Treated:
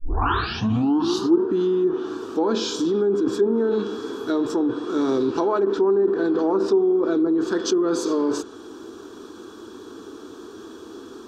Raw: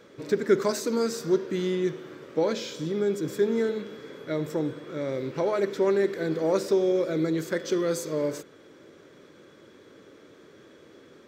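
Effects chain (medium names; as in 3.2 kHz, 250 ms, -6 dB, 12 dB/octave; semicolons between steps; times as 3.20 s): tape start-up on the opening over 1.46 s; static phaser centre 560 Hz, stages 6; low-pass that closes with the level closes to 1.1 kHz, closed at -23 dBFS; in parallel at +1.5 dB: compressor with a negative ratio -35 dBFS, ratio -1; on the sum: trim +5 dB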